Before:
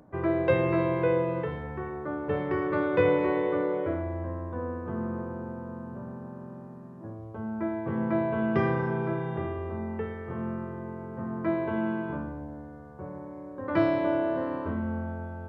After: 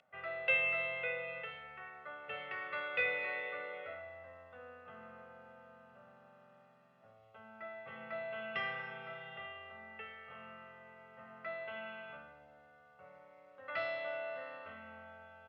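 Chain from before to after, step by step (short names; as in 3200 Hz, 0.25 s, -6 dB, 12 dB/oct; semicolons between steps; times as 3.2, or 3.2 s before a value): band-pass 2800 Hz, Q 3.3; comb 1.5 ms, depth 87%; gain +5 dB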